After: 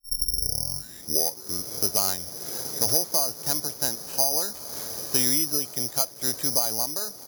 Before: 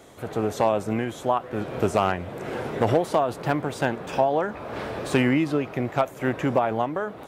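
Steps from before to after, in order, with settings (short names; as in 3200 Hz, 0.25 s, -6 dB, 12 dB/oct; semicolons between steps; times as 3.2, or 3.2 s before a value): tape start at the beginning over 1.87 s; careless resampling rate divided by 8×, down filtered, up zero stuff; gain -11 dB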